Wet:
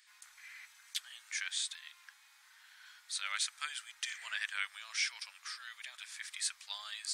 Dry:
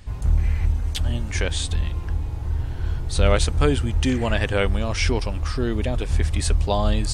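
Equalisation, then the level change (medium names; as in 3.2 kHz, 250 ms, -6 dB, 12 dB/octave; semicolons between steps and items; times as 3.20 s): inverse Chebyshev high-pass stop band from 350 Hz, stop band 70 dB; peaking EQ 2.8 kHz -6.5 dB 0.27 oct; -6.5 dB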